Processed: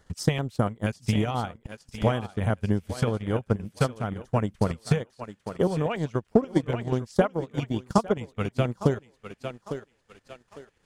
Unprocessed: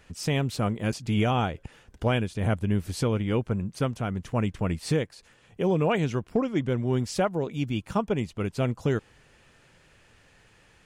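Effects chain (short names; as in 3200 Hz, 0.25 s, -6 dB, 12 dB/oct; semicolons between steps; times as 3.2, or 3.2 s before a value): LFO notch square 5.2 Hz 310–2500 Hz; thinning echo 0.852 s, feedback 36%, high-pass 300 Hz, level -7 dB; transient shaper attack +11 dB, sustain -11 dB; gain -3.5 dB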